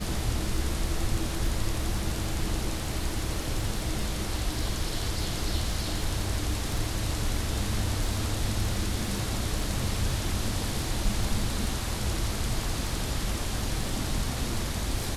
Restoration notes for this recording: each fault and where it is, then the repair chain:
surface crackle 31 per second −33 dBFS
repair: click removal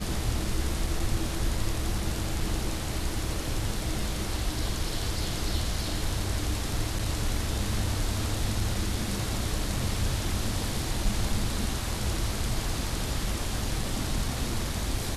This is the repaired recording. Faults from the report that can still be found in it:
none of them is left

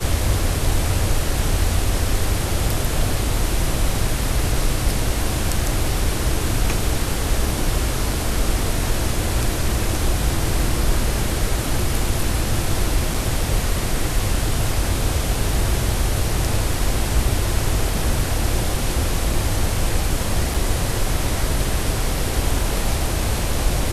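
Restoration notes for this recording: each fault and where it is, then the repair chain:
0:13.14: drop-out 3.8 ms
0:20.54: drop-out 4.3 ms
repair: repair the gap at 0:13.14, 3.8 ms
repair the gap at 0:20.54, 4.3 ms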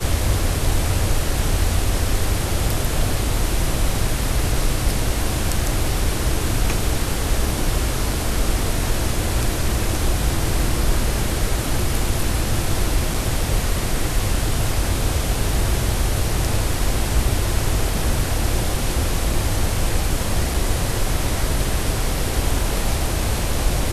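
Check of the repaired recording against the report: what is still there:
none of them is left

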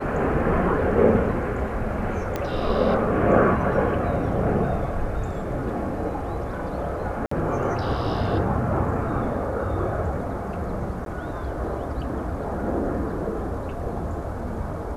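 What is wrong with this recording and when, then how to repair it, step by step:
0:02.36: click −13 dBFS
0:07.26–0:07.31: drop-out 54 ms
0:11.05–0:11.06: drop-out 12 ms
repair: click removal
repair the gap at 0:07.26, 54 ms
repair the gap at 0:11.05, 12 ms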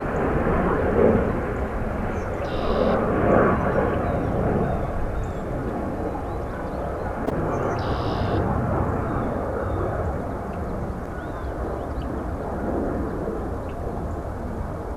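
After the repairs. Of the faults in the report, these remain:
none of them is left

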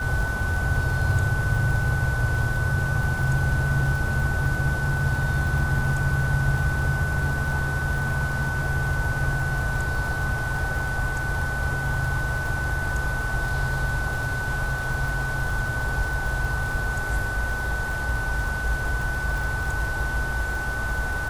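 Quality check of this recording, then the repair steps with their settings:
surface crackle 30 per second −29 dBFS
whistle 1,500 Hz −28 dBFS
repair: click removal
notch filter 1,500 Hz, Q 30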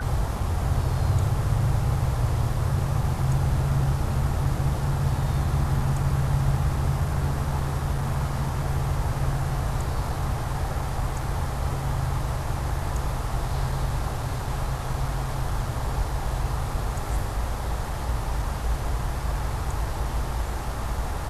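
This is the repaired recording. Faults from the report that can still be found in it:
none of them is left

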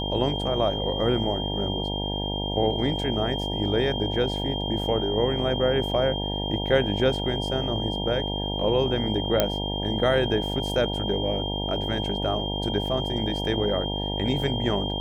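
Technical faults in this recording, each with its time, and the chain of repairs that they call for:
mains buzz 50 Hz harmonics 19 −30 dBFS
whistle 3,200 Hz −31 dBFS
0:09.40: click −5 dBFS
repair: click removal
notch filter 3,200 Hz, Q 30
hum removal 50 Hz, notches 19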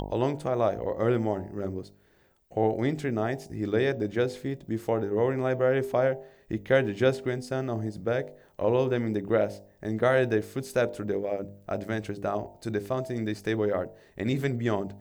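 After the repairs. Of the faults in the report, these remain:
none of them is left

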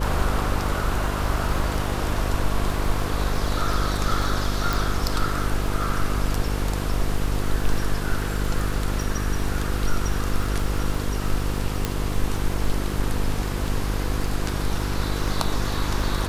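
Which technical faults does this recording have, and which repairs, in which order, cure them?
mains buzz 50 Hz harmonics 10 −27 dBFS
surface crackle 27 per second −30 dBFS
0:04.73: click
0:11.85: click −8 dBFS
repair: click removal
hum removal 50 Hz, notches 10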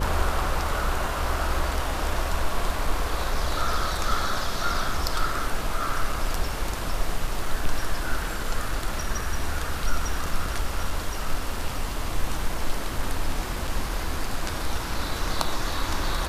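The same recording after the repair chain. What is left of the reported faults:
none of them is left

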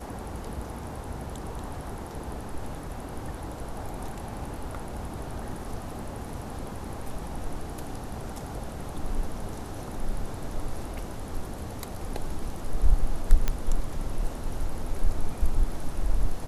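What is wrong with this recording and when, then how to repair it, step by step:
0:13.48: click −11 dBFS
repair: click removal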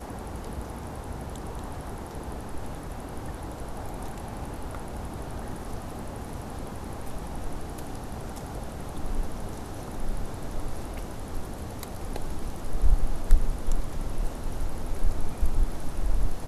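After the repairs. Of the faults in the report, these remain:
none of them is left

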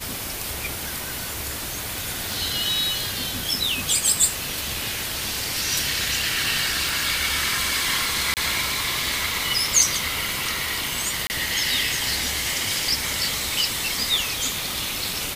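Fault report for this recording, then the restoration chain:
0:02.32: click
0:06.89: click
0:08.34–0:08.37: drop-out 28 ms
0:11.27–0:11.30: drop-out 29 ms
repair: click removal
repair the gap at 0:08.34, 28 ms
repair the gap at 0:11.27, 29 ms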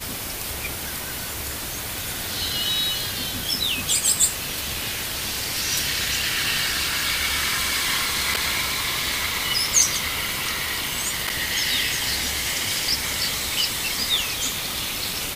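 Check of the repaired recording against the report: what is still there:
none of them is left

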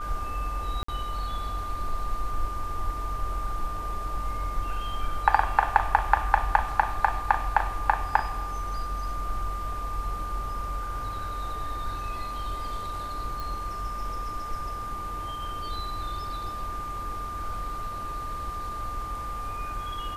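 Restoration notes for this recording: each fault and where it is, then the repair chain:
whistle 1,200 Hz −33 dBFS
0:00.83–0:00.88: drop-out 54 ms
0:13.40: click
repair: click removal
notch filter 1,200 Hz, Q 30
repair the gap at 0:00.83, 54 ms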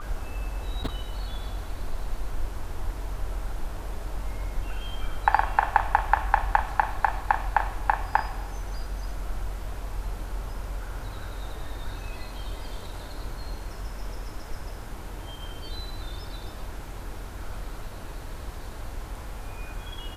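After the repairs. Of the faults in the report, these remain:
none of them is left

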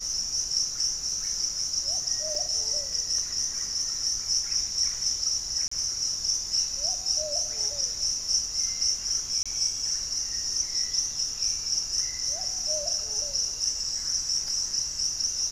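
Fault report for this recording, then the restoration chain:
0:02.35: drop-out 2.2 ms
0:05.68–0:05.71: drop-out 34 ms
0:09.43–0:09.46: drop-out 26 ms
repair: repair the gap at 0:02.35, 2.2 ms
repair the gap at 0:05.68, 34 ms
repair the gap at 0:09.43, 26 ms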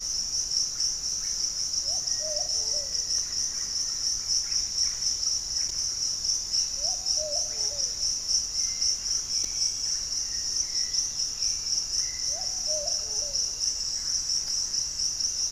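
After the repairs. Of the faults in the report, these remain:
none of them is left

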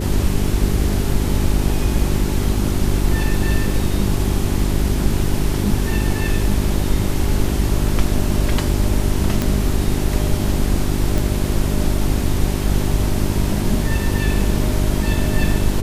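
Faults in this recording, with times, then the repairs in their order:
mains hum 50 Hz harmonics 8 −21 dBFS
0:09.42: click
0:11.18: click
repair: click removal
hum removal 50 Hz, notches 8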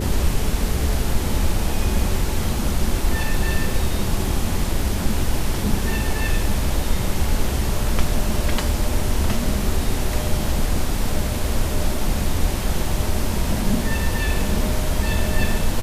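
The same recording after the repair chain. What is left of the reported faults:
none of them is left

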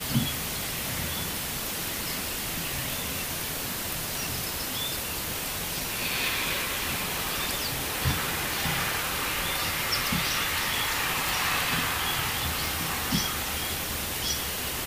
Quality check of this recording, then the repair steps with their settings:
0:11.29: click
0:12.66: click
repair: click removal

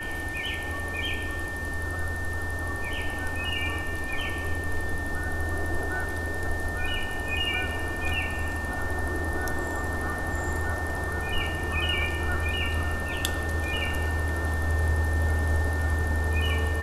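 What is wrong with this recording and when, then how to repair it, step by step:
whistle 1,800 Hz −33 dBFS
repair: notch filter 1,800 Hz, Q 30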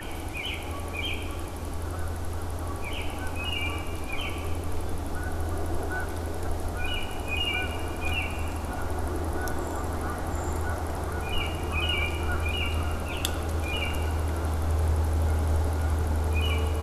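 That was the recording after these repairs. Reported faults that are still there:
none of them is left

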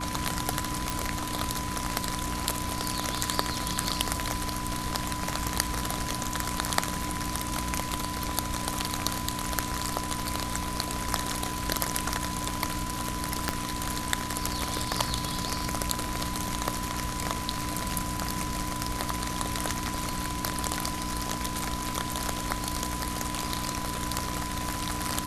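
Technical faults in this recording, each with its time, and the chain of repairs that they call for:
mains hum 60 Hz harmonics 5 −37 dBFS
whistle 1,000 Hz −36 dBFS
0:00.90: click
0:13.49: click −9 dBFS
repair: click removal
hum removal 60 Hz, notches 5
notch filter 1,000 Hz, Q 30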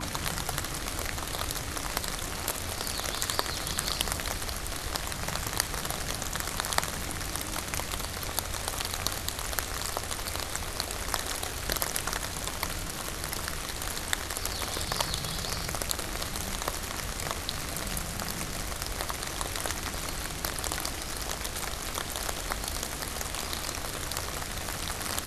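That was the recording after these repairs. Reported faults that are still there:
0:13.49: click

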